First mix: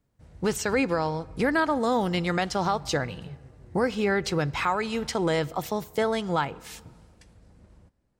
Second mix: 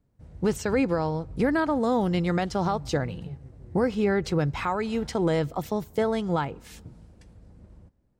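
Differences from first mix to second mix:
speech: send −8.5 dB
master: add tilt shelving filter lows +4.5 dB, about 740 Hz

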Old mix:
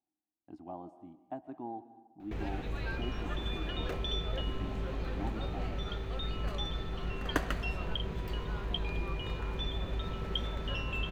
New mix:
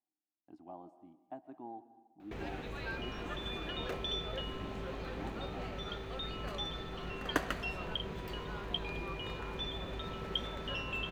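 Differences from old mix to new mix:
speech −4.5 dB
master: add low-shelf EQ 110 Hz −12 dB

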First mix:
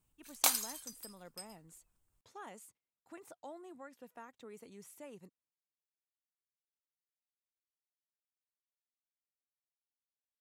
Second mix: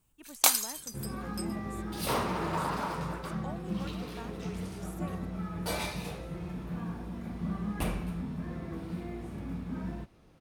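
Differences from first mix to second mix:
speech +4.5 dB
first sound +6.0 dB
second sound: unmuted

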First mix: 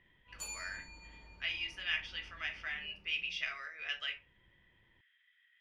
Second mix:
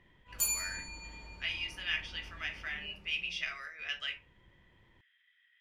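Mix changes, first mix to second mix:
background +6.5 dB
master: remove high-frequency loss of the air 69 metres

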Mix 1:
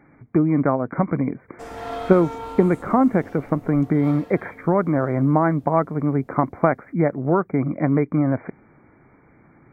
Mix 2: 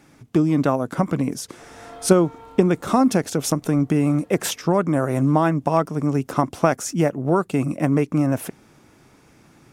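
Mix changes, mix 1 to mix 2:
speech: remove linear-phase brick-wall low-pass 2,400 Hz
background −10.5 dB

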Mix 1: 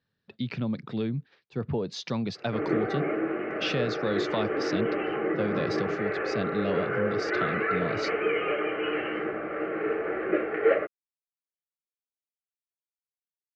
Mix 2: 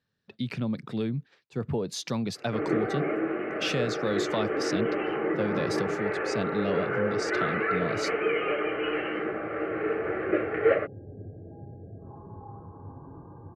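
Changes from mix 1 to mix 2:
speech: remove low-pass filter 5,200 Hz 24 dB per octave
second sound: unmuted

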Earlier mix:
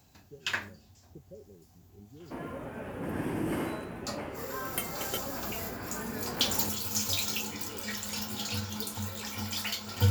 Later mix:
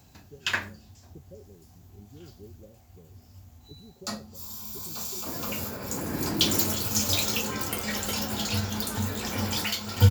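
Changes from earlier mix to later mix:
first sound +4.5 dB
second sound: entry +2.95 s
master: add low-shelf EQ 230 Hz +3.5 dB

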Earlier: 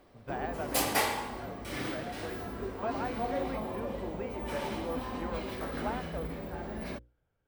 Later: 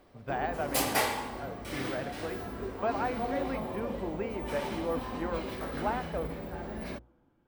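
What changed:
speech +4.0 dB
reverb: on, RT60 2.8 s

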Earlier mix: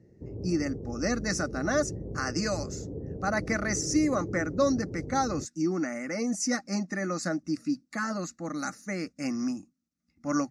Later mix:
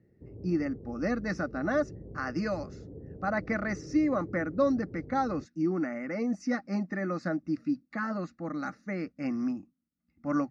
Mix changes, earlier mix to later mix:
background −7.0 dB
master: add high-frequency loss of the air 310 metres

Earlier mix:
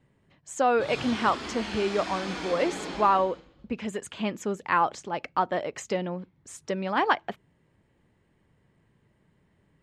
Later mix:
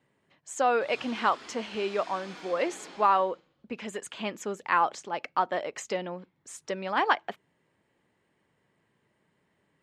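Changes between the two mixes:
background −9.0 dB
master: add high-pass filter 430 Hz 6 dB per octave

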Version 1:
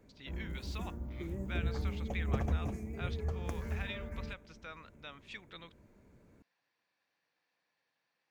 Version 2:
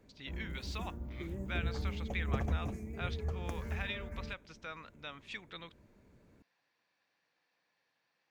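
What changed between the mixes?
speech +3.0 dB
background: send −6.0 dB

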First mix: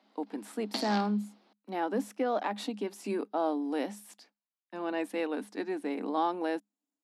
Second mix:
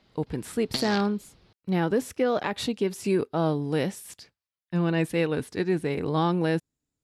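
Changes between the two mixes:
background: send −11.5 dB
master: remove Chebyshev high-pass with heavy ripple 200 Hz, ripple 9 dB

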